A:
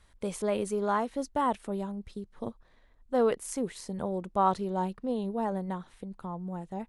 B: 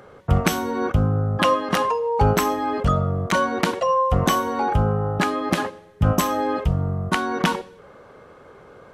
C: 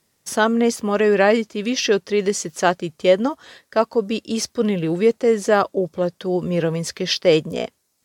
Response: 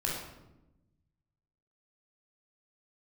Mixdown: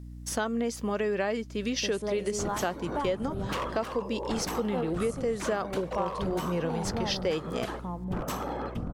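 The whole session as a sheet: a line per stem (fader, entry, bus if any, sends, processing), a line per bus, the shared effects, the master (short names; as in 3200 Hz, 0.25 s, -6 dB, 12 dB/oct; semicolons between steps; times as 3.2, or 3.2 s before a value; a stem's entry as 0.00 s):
-0.5 dB, 1.60 s, send -20 dB, ending taper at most 190 dB/s
-11.0 dB, 2.10 s, no send, whisperiser; wavefolder -14.5 dBFS
-5.0 dB, 0.00 s, no send, dry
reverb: on, RT60 0.95 s, pre-delay 17 ms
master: hum 60 Hz, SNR 17 dB; compressor 4:1, threshold -27 dBFS, peak gain reduction 11 dB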